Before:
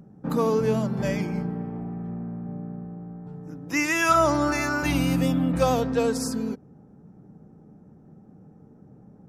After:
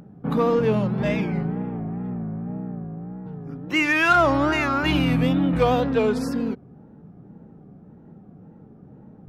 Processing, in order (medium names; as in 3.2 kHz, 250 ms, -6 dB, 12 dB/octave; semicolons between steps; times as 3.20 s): resonant high shelf 4.6 kHz -11.5 dB, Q 1.5; in parallel at -5 dB: saturation -23 dBFS, distortion -9 dB; on the sum: wow and flutter 120 cents